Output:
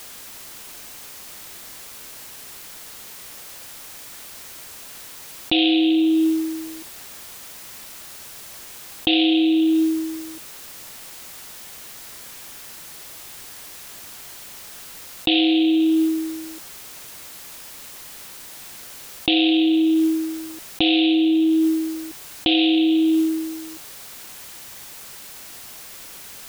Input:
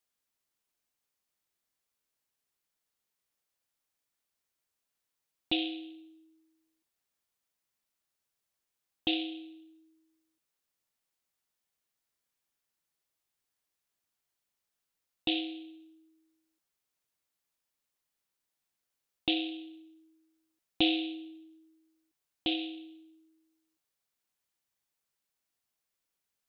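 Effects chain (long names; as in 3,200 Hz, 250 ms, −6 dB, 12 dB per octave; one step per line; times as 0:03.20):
envelope flattener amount 100%
level +6 dB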